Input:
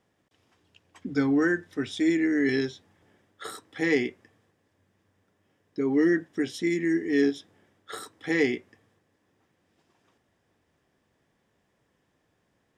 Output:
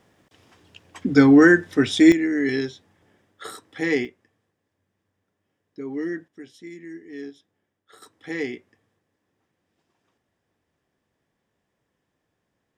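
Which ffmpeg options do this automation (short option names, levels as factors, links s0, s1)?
-af "asetnsamples=n=441:p=0,asendcmd='2.12 volume volume 1.5dB;4.05 volume volume -6.5dB;6.28 volume volume -13.5dB;8.02 volume volume -4.5dB',volume=3.55"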